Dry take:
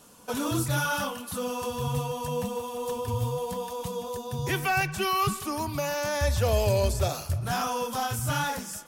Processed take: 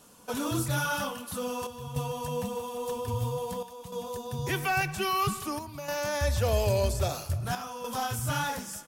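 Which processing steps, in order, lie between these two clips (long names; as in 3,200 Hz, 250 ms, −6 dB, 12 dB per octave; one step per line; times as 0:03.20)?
on a send: repeating echo 101 ms, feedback 52%, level −21.5 dB
on the sum: square-wave tremolo 0.51 Hz, depth 60%, duty 85%
level −2 dB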